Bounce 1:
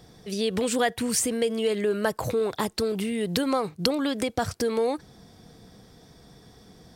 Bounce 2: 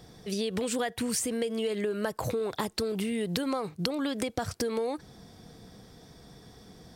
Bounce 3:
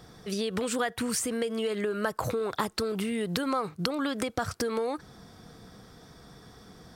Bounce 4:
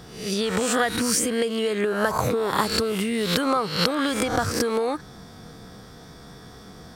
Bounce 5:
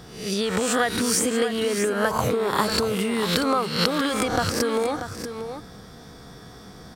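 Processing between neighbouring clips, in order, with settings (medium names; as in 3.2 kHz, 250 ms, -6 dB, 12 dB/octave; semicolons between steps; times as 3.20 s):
compression, threshold -27 dBFS, peak gain reduction 8.5 dB
peaking EQ 1.3 kHz +8 dB 0.71 oct
reverse spectral sustain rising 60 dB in 0.59 s; trim +5 dB
delay 636 ms -9.5 dB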